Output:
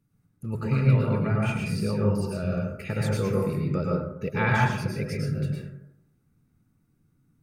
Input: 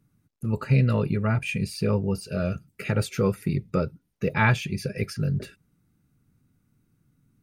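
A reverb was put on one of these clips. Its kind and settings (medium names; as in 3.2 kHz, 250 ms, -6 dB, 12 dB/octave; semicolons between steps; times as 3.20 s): plate-style reverb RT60 0.84 s, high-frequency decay 0.35×, pre-delay 95 ms, DRR -3 dB; trim -5.5 dB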